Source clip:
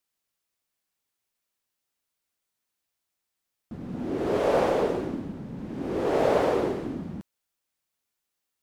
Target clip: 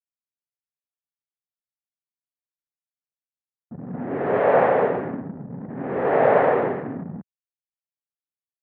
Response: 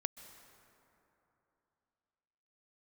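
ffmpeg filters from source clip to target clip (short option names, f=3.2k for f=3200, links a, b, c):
-af "highpass=f=120:w=0.5412,highpass=f=120:w=1.3066,equalizer=f=210:t=q:w=4:g=-4,equalizer=f=330:t=q:w=4:g=-10,equalizer=f=750:t=q:w=4:g=3,equalizer=f=1.8k:t=q:w=4:g=6,lowpass=f=2.2k:w=0.5412,lowpass=f=2.2k:w=1.3066,anlmdn=0.251,volume=6dB"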